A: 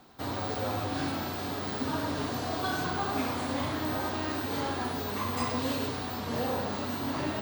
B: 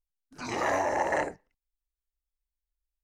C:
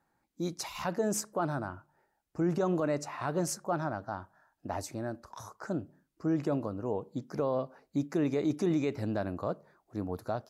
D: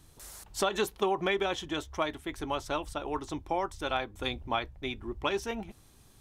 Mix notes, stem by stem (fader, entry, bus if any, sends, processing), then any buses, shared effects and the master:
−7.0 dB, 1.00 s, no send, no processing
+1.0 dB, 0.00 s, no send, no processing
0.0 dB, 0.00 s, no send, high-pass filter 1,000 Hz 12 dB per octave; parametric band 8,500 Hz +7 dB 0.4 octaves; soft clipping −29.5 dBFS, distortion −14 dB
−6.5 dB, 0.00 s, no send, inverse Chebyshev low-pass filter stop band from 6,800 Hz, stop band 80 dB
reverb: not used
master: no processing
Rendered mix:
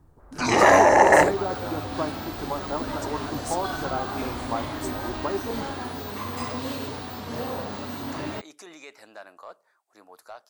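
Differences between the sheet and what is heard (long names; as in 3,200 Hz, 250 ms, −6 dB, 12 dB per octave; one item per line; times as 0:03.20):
stem A −7.0 dB → −0.5 dB
stem B +1.0 dB → +12.5 dB
stem D −6.5 dB → +2.5 dB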